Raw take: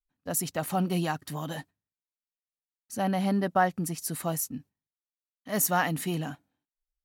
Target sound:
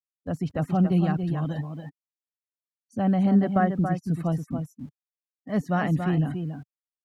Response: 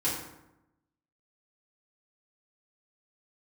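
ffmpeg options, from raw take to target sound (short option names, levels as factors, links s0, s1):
-filter_complex "[0:a]aecho=1:1:280:0.447,afftfilt=real='re*gte(hypot(re,im),0.00794)':imag='im*gte(hypot(re,im),0.00794)':win_size=1024:overlap=0.75,aemphasis=mode=reproduction:type=riaa,bandreject=f=920:w=11,acrossover=split=110|4200[s0][s1][s2];[s0]aeval=exprs='val(0)*gte(abs(val(0)),0.00211)':c=same[s3];[s2]alimiter=level_in=15.8:limit=0.0631:level=0:latency=1:release=60,volume=0.0631[s4];[s3][s1][s4]amix=inputs=3:normalize=0,volume=0.841"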